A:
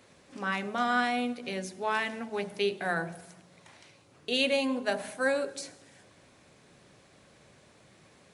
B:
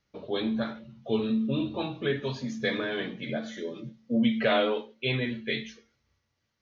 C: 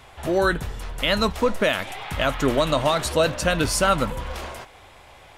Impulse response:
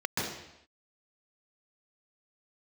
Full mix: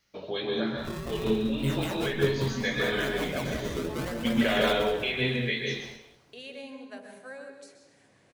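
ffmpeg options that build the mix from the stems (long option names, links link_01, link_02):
-filter_complex "[0:a]acompressor=threshold=-58dB:ratio=1.5,adelay=2050,volume=-7dB,asplit=2[link_01][link_02];[link_02]volume=-11dB[link_03];[1:a]highshelf=frequency=2600:gain=11.5,volume=2.5dB,asplit=2[link_04][link_05];[link_05]volume=-15dB[link_06];[2:a]acrusher=samples=34:mix=1:aa=0.000001:lfo=1:lforange=54.4:lforate=0.75,adelay=600,volume=-4.5dB,asplit=2[link_07][link_08];[link_08]volume=-12.5dB[link_09];[link_04][link_07]amix=inputs=2:normalize=0,flanger=delay=17.5:depth=3.1:speed=2.8,acompressor=threshold=-36dB:ratio=4,volume=0dB[link_10];[3:a]atrim=start_sample=2205[link_11];[link_03][link_06]amix=inputs=2:normalize=0[link_12];[link_12][link_11]afir=irnorm=-1:irlink=0[link_13];[link_09]aecho=0:1:191|382|573|764|955:1|0.38|0.144|0.0549|0.0209[link_14];[link_01][link_10][link_13][link_14]amix=inputs=4:normalize=0"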